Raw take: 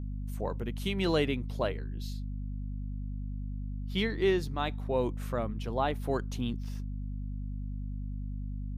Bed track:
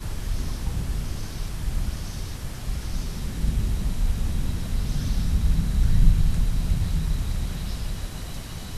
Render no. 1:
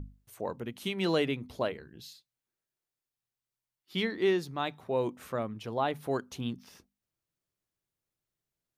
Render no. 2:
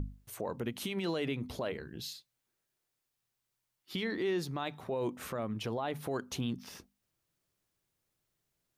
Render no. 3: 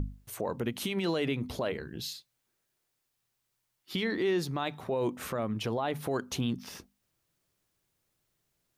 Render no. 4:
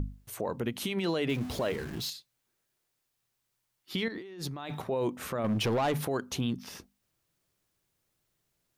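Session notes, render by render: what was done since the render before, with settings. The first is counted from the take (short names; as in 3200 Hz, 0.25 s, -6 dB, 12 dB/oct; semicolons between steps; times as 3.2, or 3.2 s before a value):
notches 50/100/150/200/250 Hz
in parallel at +0.5 dB: compressor, threshold -39 dBFS, peak gain reduction 15.5 dB; on the sum: limiter -26 dBFS, peak gain reduction 11.5 dB
gain +4 dB
1.29–2.1 zero-crossing step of -39 dBFS; 4.08–4.82 negative-ratio compressor -40 dBFS; 5.44–6.05 sample leveller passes 2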